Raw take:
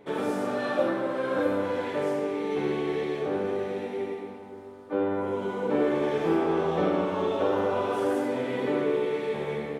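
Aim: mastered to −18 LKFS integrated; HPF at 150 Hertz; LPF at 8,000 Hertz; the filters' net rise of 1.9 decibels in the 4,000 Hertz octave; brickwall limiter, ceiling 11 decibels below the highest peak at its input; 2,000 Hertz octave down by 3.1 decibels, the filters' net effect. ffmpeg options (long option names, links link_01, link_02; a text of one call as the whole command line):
ffmpeg -i in.wav -af "highpass=150,lowpass=8000,equalizer=frequency=2000:width_type=o:gain=-5,equalizer=frequency=4000:width_type=o:gain=4.5,volume=14.5dB,alimiter=limit=-9.5dB:level=0:latency=1" out.wav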